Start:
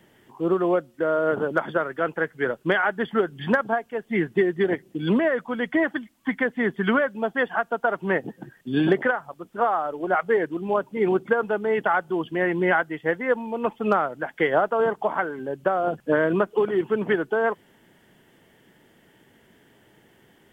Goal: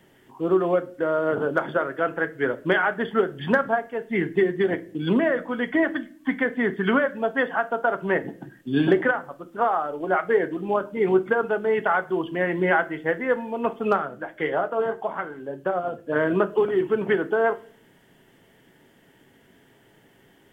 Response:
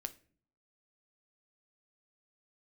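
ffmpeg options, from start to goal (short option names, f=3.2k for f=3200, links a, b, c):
-filter_complex "[0:a]asettb=1/sr,asplit=3[a][b][c];[a]atrim=end=13.964[d];[b]atrim=start=13.96:end=16.16,asetpts=PTS-STARTPTS,afade=t=in:d=0.004:c=qsin,afade=t=out:st=2.196:d=0.004:c=qsin,flanger=delay=4.7:depth=5.3:regen=47:speed=1.7:shape=triangular[e];[c]atrim=start=16.156[f];[d][e]acrossfade=d=0.004:c1=hsin:c2=qsin[g];[g][f]acrossfade=d=0.004:c1=qsin:c2=hsin[h];[1:a]atrim=start_sample=2205[i];[h][i]afir=irnorm=-1:irlink=0,volume=2.5dB"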